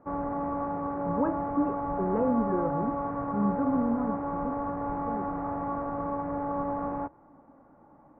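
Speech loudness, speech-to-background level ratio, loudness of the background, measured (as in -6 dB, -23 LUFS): -32.0 LUFS, 0.0 dB, -32.0 LUFS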